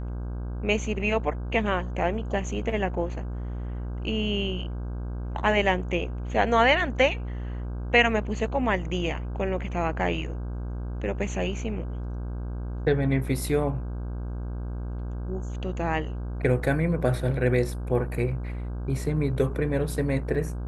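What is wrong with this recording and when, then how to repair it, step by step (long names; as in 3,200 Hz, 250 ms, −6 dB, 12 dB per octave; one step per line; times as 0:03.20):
mains buzz 60 Hz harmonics 27 −32 dBFS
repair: hum removal 60 Hz, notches 27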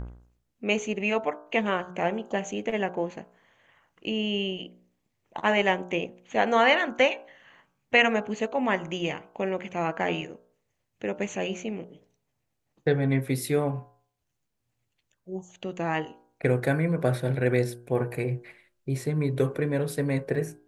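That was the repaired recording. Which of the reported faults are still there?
none of them is left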